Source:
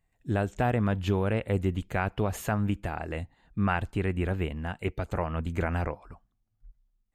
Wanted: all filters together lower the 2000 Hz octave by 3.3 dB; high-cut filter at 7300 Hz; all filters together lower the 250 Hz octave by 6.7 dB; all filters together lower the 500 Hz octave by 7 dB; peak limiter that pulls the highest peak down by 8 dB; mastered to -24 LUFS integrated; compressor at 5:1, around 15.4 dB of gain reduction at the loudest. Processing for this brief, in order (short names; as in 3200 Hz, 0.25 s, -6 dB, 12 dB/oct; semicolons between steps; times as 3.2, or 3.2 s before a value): LPF 7300 Hz; bell 250 Hz -8 dB; bell 500 Hz -6.5 dB; bell 2000 Hz -4 dB; compressor 5:1, threshold -44 dBFS; gain +25.5 dB; limiter -11.5 dBFS